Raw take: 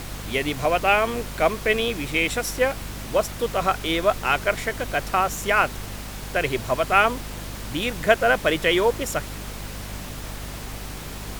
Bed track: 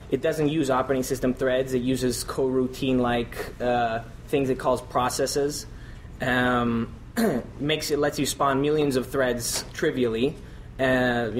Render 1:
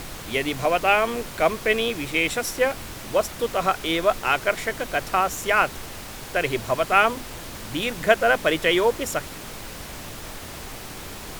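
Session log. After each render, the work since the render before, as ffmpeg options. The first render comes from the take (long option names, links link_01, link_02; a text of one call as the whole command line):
ffmpeg -i in.wav -af "bandreject=frequency=50:width_type=h:width=6,bandreject=frequency=100:width_type=h:width=6,bandreject=frequency=150:width_type=h:width=6,bandreject=frequency=200:width_type=h:width=6,bandreject=frequency=250:width_type=h:width=6" out.wav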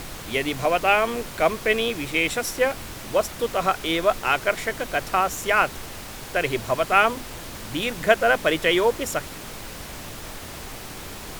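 ffmpeg -i in.wav -af anull out.wav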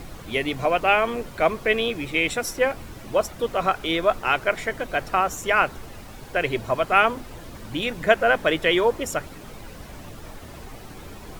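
ffmpeg -i in.wav -af "afftdn=noise_reduction=10:noise_floor=-37" out.wav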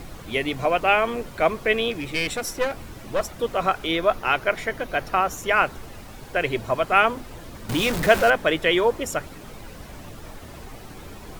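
ffmpeg -i in.wav -filter_complex "[0:a]asettb=1/sr,asplit=3[link_01][link_02][link_03];[link_01]atrim=end=1.914[link_04];[link_02]atrim=start=1.91:end=3.27,asetpts=PTS-STARTPTS,afade=type=in:duration=0.004:curve=qsin,afade=type=out:start_time=1.356:duration=0.004:curve=qsin,aeval=exprs='clip(val(0),-1,0.0531)':channel_layout=same[link_05];[link_03]atrim=start=3.266[link_06];[link_04][link_05]acrossfade=duration=0.004:curve1=hsin:curve2=qsin[link_07];[link_07][link_06]acrossfade=duration=0.004:curve1=qsin:curve2=hsin,asettb=1/sr,asplit=3[link_08][link_09][link_10];[link_08]atrim=end=3.864[link_11];[link_09]atrim=start=3.86:end=5.51,asetpts=PTS-STARTPTS,afade=type=in:duration=0.004:curve=qsin,afade=type=out:start_time=1.646:duration=0.004:curve=qsin,equalizer=frequency=7800:width_type=o:width=0.21:gain=-7[link_12];[link_10]atrim=start=5.506[link_13];[link_11][link_12]acrossfade=duration=0.004:curve1=hsin:curve2=qsin[link_14];[link_14][link_13]acrossfade=duration=0.004:curve1=qsin:curve2=hsin,asettb=1/sr,asplit=3[link_15][link_16][link_17];[link_15]atrim=end=7.694[link_18];[link_16]atrim=start=7.69:end=8.3,asetpts=PTS-STARTPTS,afade=type=in:duration=0.004:curve=qsin,afade=type=out:start_time=0.606:duration=0.004:curve=qsin,aeval=exprs='val(0)+0.5*0.075*sgn(val(0))':channel_layout=same[link_19];[link_17]atrim=start=8.296[link_20];[link_18][link_19]acrossfade=duration=0.004:curve1=hsin:curve2=qsin[link_21];[link_21][link_20]acrossfade=duration=0.004:curve1=qsin:curve2=hsin" out.wav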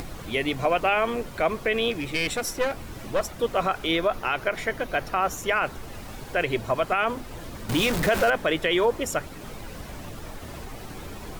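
ffmpeg -i in.wav -af "alimiter=limit=-13dB:level=0:latency=1:release=48,acompressor=mode=upward:threshold=-32dB:ratio=2.5" out.wav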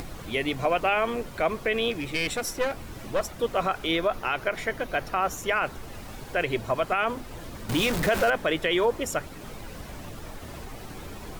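ffmpeg -i in.wav -af "volume=-1.5dB" out.wav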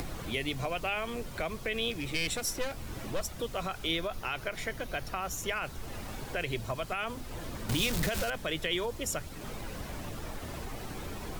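ffmpeg -i in.wav -filter_complex "[0:a]acrossover=split=160|3000[link_01][link_02][link_03];[link_02]acompressor=threshold=-38dB:ratio=2.5[link_04];[link_01][link_04][link_03]amix=inputs=3:normalize=0" out.wav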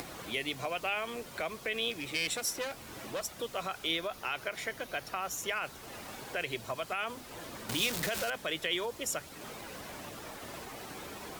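ffmpeg -i in.wav -af "highpass=frequency=380:poles=1" out.wav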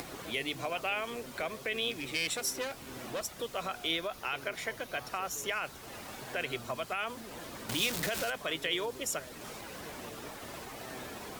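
ffmpeg -i in.wav -i bed.wav -filter_complex "[1:a]volume=-27.5dB[link_01];[0:a][link_01]amix=inputs=2:normalize=0" out.wav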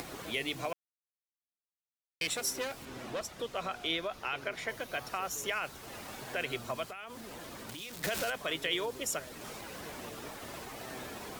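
ffmpeg -i in.wav -filter_complex "[0:a]asettb=1/sr,asplit=3[link_01][link_02][link_03];[link_01]atrim=end=2.854[link_04];[link_02]atrim=start=2.85:end=4.69,asetpts=PTS-STARTPTS,afade=type=in:duration=0.004:curve=qsin,afade=type=out:start_time=1.836:duration=0.004:curve=qsin,highshelf=frequency=8700:gain=-11.5[link_05];[link_03]atrim=start=4.686[link_06];[link_04][link_05]acrossfade=duration=0.004:curve1=hsin:curve2=qsin[link_07];[link_07][link_06]acrossfade=duration=0.004:curve1=qsin:curve2=hsin,asettb=1/sr,asplit=3[link_08][link_09][link_10];[link_08]atrim=end=6.864[link_11];[link_09]atrim=start=6.86:end=8.04,asetpts=PTS-STARTPTS,afade=type=in:duration=0.004:curve=qsin,afade=type=out:start_time=1.176:duration=0.004:curve=qsin,acompressor=threshold=-41dB:ratio=5:attack=3.2:release=140:knee=1:detection=peak[link_12];[link_10]atrim=start=8.036[link_13];[link_11][link_12]acrossfade=duration=0.004:curve1=hsin:curve2=qsin[link_14];[link_14][link_13]acrossfade=duration=0.004:curve1=qsin:curve2=hsin,asplit=3[link_15][link_16][link_17];[link_15]atrim=end=0.73,asetpts=PTS-STARTPTS,afade=type=out:start_time=0.726:duration=0.004:curve=hsin[link_18];[link_16]atrim=start=0.73:end=2.21,asetpts=PTS-STARTPTS,volume=0[link_19];[link_17]atrim=start=2.21,asetpts=PTS-STARTPTS,afade=type=in:duration=0.004:curve=hsin[link_20];[link_18][link_19][link_20]concat=n=3:v=0:a=1" out.wav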